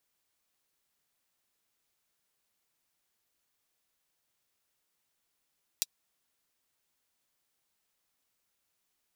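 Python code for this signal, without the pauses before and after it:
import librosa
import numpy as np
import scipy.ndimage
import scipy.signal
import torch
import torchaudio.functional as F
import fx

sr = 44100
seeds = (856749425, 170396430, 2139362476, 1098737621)

y = fx.drum_hat(sr, length_s=0.24, from_hz=4100.0, decay_s=0.04)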